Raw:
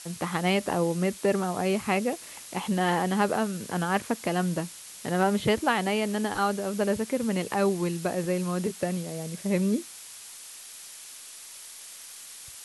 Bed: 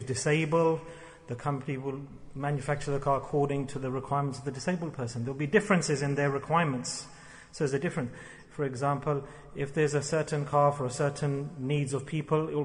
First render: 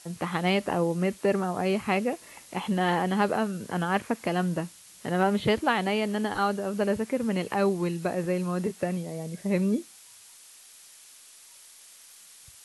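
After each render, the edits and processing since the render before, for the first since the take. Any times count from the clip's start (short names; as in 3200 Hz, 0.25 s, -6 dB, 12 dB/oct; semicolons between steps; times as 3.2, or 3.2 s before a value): noise print and reduce 7 dB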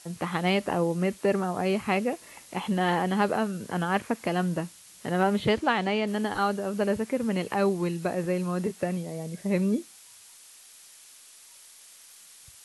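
5.45–6.06 LPF 10000 Hz -> 5400 Hz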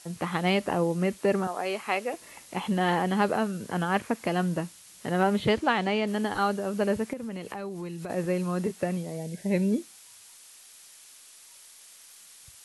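1.47–2.14 HPF 470 Hz; 7.13–8.1 compressor 5:1, threshold -33 dBFS; 9.17–9.72 Butterworth band-stop 1200 Hz, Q 2.9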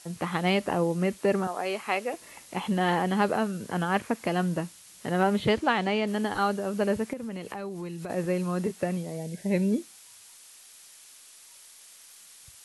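nothing audible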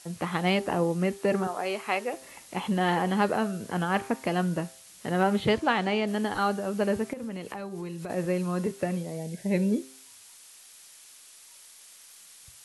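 de-hum 132 Hz, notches 14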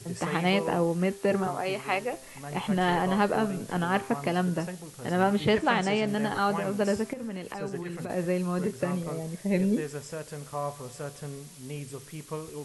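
add bed -9 dB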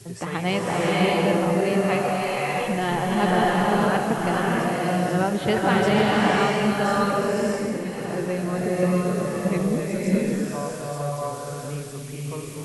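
bloom reverb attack 0.63 s, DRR -5 dB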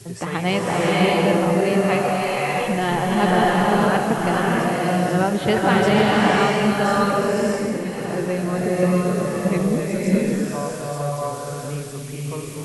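gain +3 dB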